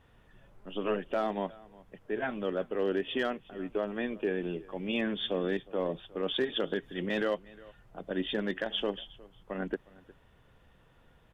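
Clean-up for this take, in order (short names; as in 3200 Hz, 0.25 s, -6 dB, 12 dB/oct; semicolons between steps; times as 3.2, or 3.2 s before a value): clip repair -21 dBFS; inverse comb 0.36 s -22 dB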